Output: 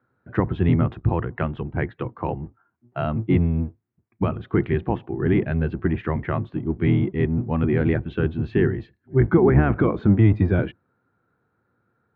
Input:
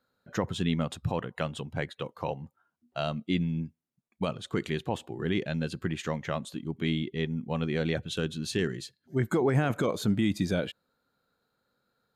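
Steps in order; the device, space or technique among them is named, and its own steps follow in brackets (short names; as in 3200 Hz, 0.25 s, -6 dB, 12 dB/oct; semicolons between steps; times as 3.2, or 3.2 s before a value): sub-octave bass pedal (octaver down 1 oct, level 0 dB; speaker cabinet 74–2100 Hz, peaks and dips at 110 Hz +5 dB, 350 Hz +6 dB, 550 Hz -6 dB); gain +6.5 dB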